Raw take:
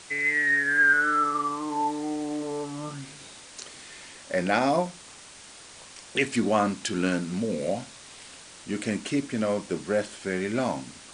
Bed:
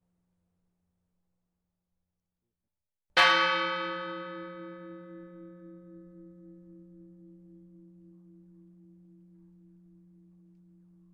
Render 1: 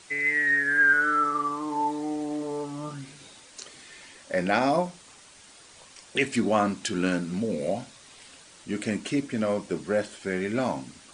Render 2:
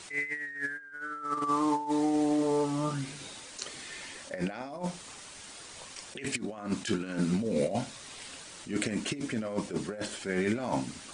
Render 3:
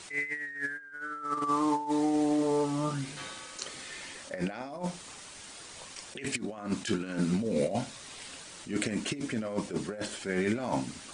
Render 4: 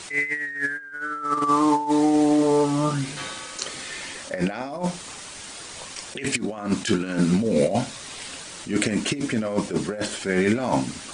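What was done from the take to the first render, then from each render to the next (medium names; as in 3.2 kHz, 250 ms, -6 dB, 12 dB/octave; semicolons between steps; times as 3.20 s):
noise reduction 6 dB, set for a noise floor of -47 dBFS
compressor with a negative ratio -30 dBFS, ratio -0.5; attacks held to a fixed rise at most 190 dB/s
add bed -24 dB
trim +8.5 dB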